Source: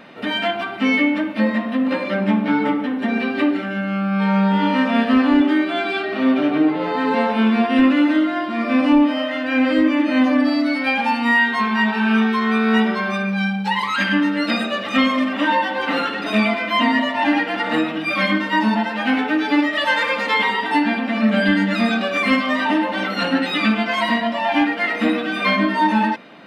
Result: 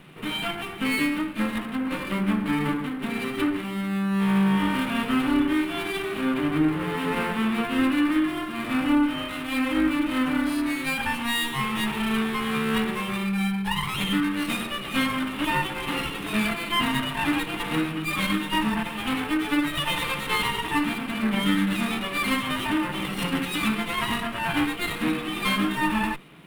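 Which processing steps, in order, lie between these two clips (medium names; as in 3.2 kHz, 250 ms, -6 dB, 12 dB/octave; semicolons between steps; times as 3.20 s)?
comb filter that takes the minimum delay 0.31 ms; FFT filter 110 Hz 0 dB, 150 Hz +10 dB, 230 Hz -8 dB, 370 Hz 0 dB, 590 Hz -12 dB, 1.2 kHz +2 dB, 3.1 kHz -3 dB, 6.2 kHz -12 dB, 9.4 kHz +7 dB; trim -2.5 dB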